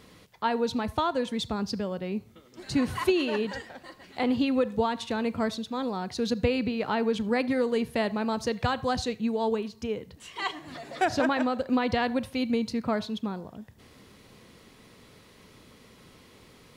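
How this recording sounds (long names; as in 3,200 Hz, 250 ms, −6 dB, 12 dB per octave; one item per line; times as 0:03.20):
background noise floor −55 dBFS
spectral slope −4.0 dB per octave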